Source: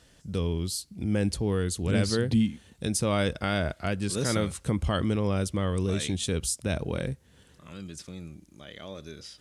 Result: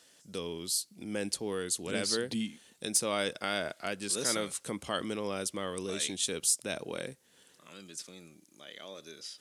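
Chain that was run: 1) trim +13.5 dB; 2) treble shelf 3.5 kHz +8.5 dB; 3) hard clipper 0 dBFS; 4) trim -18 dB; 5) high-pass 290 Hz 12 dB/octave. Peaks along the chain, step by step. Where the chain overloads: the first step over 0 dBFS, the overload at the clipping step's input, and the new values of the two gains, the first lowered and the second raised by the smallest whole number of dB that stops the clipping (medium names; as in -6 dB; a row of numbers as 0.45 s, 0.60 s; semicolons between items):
-0.5 dBFS, +5.5 dBFS, 0.0 dBFS, -18.0 dBFS, -15.5 dBFS; step 2, 5.5 dB; step 1 +7.5 dB, step 4 -12 dB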